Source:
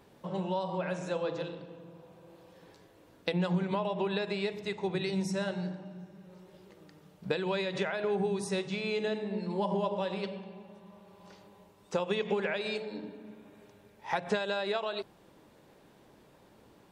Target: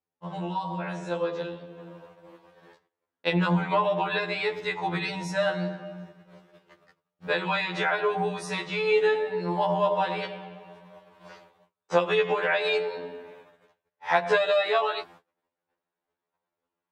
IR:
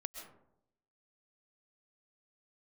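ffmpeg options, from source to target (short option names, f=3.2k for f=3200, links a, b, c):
-af "asetnsamples=n=441:p=0,asendcmd='1.78 equalizer g 14.5',equalizer=f=1.3k:w=0.34:g=7,agate=range=-35dB:threshold=-45dB:ratio=16:detection=peak,afftfilt=real='re*2*eq(mod(b,4),0)':imag='im*2*eq(mod(b,4),0)':win_size=2048:overlap=0.75"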